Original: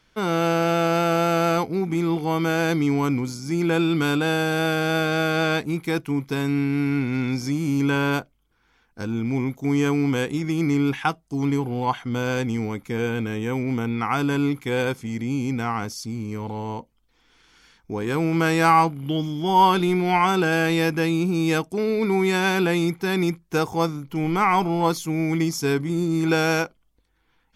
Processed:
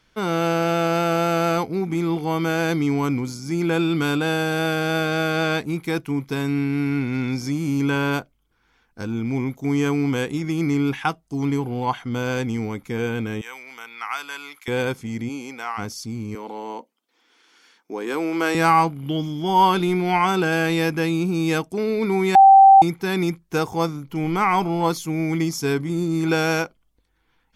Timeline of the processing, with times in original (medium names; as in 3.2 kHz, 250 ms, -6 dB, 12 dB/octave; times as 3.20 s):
13.41–14.68 s: high-pass 1.3 kHz
15.28–15.77 s: high-pass 300 Hz -> 980 Hz
16.35–18.55 s: high-pass 260 Hz 24 dB/octave
22.35–22.82 s: bleep 779 Hz -6 dBFS